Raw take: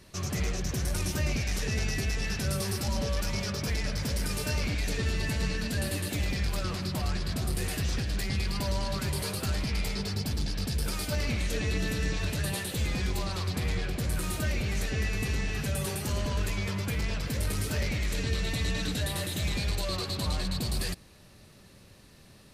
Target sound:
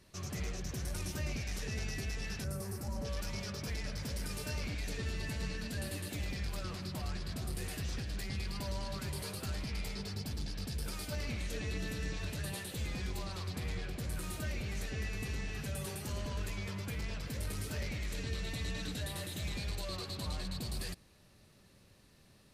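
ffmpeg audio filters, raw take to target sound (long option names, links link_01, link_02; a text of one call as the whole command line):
ffmpeg -i in.wav -filter_complex "[0:a]asettb=1/sr,asplit=3[link_01][link_02][link_03];[link_01]atrim=end=2.444[link_04];[link_02]atrim=start=2.44:end=3.05,asetpts=PTS-STARTPTS,afade=type=in:duration=0.004:curve=qsin,afade=type=out:start_time=0.606:duration=0.004:curve=qsin,equalizer=frequency=3400:width=0.95:gain=-14[link_05];[link_03]atrim=start=3.046[link_06];[link_04][link_05]acrossfade=duration=0.004:curve1=hsin:curve2=qsin[link_07];[link_07][link_06]acrossfade=duration=0.004:curve1=qsin:curve2=hsin,volume=-8.5dB" out.wav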